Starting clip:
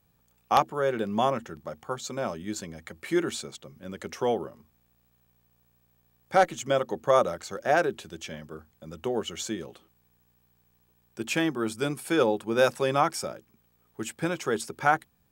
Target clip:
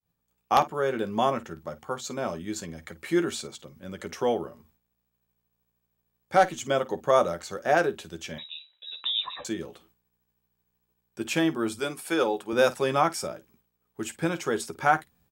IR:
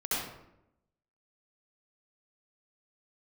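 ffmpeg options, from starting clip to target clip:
-filter_complex "[0:a]asettb=1/sr,asplit=3[a][b][c];[a]atrim=end=8.384[d];[b]atrim=start=8.38:end=9.45,asetpts=PTS-STARTPTS,afade=t=in:d=0.004:c=qsin,afade=t=out:st=1.066:d=0.004:c=qsin,lowpass=f=3.4k:t=q:w=0.5098,lowpass=f=3.4k:t=q:w=0.6013,lowpass=f=3.4k:t=q:w=0.9,lowpass=f=3.4k:t=q:w=2.563,afreqshift=-4000[e];[c]atrim=start=9.446[f];[d][e]acrossfade=d=0.004:c1=hsin:c2=qsin[g];[g][f]acrossfade=d=0.004:c1=qsin:c2=hsin,asettb=1/sr,asplit=3[h][i][j];[h]atrim=end=11.794[k];[i]atrim=start=11.79:end=12.53,asetpts=PTS-STARTPTS,afade=t=in:d=0.004:c=qsin,afade=t=out:st=0.736:d=0.004:c=qsin,highpass=f=390:p=1[l];[j]atrim=start=12.526[m];[k][l]acrossfade=d=0.004:c1=hsin:c2=qsin[n];[n][m]acrossfade=d=0.004:c1=qsin:c2=hsin,aecho=1:1:12|52:0.335|0.133,agate=range=-33dB:threshold=-58dB:ratio=3:detection=peak"

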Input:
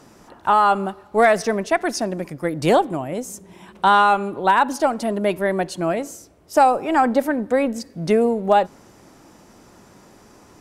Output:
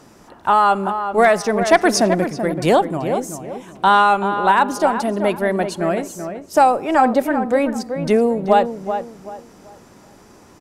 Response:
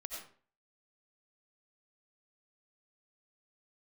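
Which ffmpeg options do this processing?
-filter_complex "[0:a]asettb=1/sr,asplit=3[a][b][c];[a]atrim=end=1.614[d];[b]atrim=start=1.61:end=2.26,asetpts=PTS-STARTPTS,afade=t=in:d=0.004:c=qsin,afade=t=out:st=0.646:d=0.004:c=qsin,acontrast=66[e];[c]atrim=start=2.256[f];[d][e]acrossfade=d=0.004:c1=hsin:c2=qsin[g];[g][f]acrossfade=d=0.004:c1=qsin:c2=hsin,asoftclip=type=hard:threshold=-5dB,asplit=2[h][i];[i]adelay=382,lowpass=f=1.8k:p=1,volume=-8dB,asplit=2[j][k];[k]adelay=382,lowpass=f=1.8k:p=1,volume=0.31,asplit=2[l][m];[m]adelay=382,lowpass=f=1.8k:p=1,volume=0.31,asplit=2[n][o];[o]adelay=382,lowpass=f=1.8k:p=1,volume=0.31[p];[h][j][l][n][p]amix=inputs=5:normalize=0,volume=1.5dB"

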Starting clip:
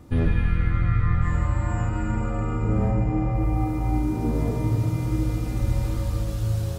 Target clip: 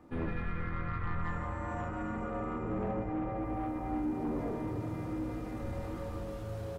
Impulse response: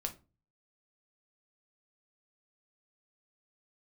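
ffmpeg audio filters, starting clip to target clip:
-filter_complex "[0:a]asplit=2[a][b];[b]asetrate=35002,aresample=44100,atempo=1.25992,volume=-7dB[c];[a][c]amix=inputs=2:normalize=0,acrossover=split=220 2300:gain=0.2 1 0.224[d][e][f];[d][e][f]amix=inputs=3:normalize=0,asoftclip=type=tanh:threshold=-24dB,asplit=2[g][h];[1:a]atrim=start_sample=2205[i];[h][i]afir=irnorm=-1:irlink=0,volume=-2dB[j];[g][j]amix=inputs=2:normalize=0,volume=-9dB"

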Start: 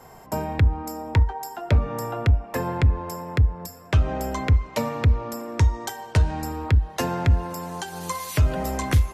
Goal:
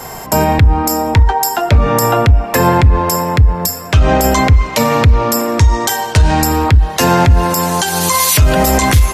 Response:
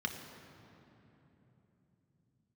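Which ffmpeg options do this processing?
-af "highshelf=f=2.1k:g=8.5,alimiter=level_in=18dB:limit=-1dB:release=50:level=0:latency=1,volume=-1dB"

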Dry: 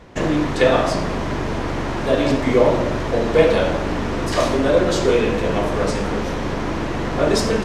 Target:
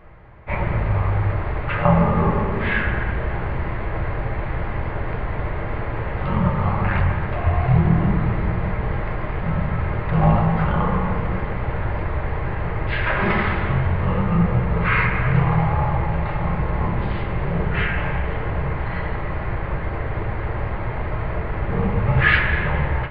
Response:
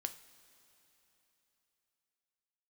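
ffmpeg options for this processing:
-filter_complex "[0:a]asetrate=14597,aresample=44100,equalizer=f=250:t=o:w=1:g=-10,equalizer=f=1k:t=o:w=1:g=4,equalizer=f=2k:t=o:w=1:g=8[a];[1:a]atrim=start_sample=2205,asetrate=66150,aresample=44100[b];[a][b]afir=irnorm=-1:irlink=0,volume=5.5dB"

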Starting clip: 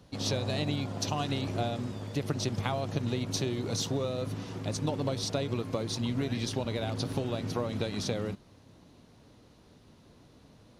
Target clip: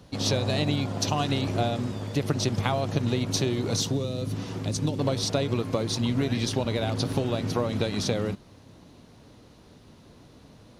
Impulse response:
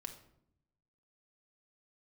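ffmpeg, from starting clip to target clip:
-filter_complex "[0:a]asettb=1/sr,asplit=3[a][b][c];[a]atrim=end=3.774[d];[b]atrim=start=3.77:end=4.99,asetpts=PTS-STARTPTS,afade=t=in:d=0.004:c=qsin,afade=t=out:st=1.216:d=0.004:c=qsin,acrossover=split=400|3000[e][f][g];[f]acompressor=threshold=-45dB:ratio=6[h];[e][h][g]amix=inputs=3:normalize=0[i];[c]atrim=start=4.986[j];[d][i]acrossfade=d=0.004:c1=hsin:c2=qsin[k];[k][j]acrossfade=d=0.004:c1=qsin:c2=hsin,volume=5.5dB"

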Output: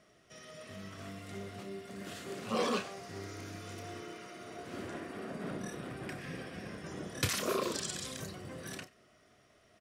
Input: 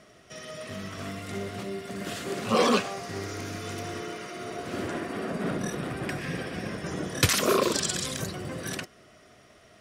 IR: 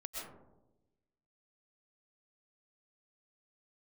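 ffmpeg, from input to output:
-filter_complex "[0:a]asplit=2[a][b];[b]adelay=31,volume=-9.5dB[c];[a][c]amix=inputs=2:normalize=0[d];[1:a]atrim=start_sample=2205,afade=t=out:st=0.14:d=0.01,atrim=end_sample=6615[e];[d][e]afir=irnorm=-1:irlink=0,volume=-4.5dB"

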